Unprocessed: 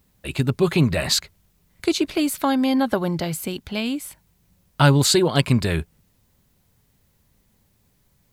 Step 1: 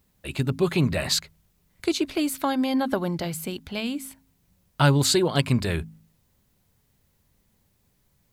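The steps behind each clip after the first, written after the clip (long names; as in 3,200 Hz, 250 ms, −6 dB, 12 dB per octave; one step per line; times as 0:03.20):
hum removal 53.55 Hz, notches 5
level −3.5 dB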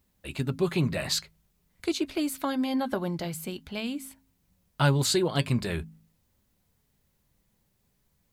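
flanger 0.47 Hz, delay 3.2 ms, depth 3.1 ms, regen −68%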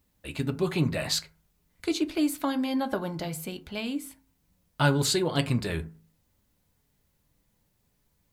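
feedback delay network reverb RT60 0.41 s, low-frequency decay 0.8×, high-frequency decay 0.45×, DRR 9.5 dB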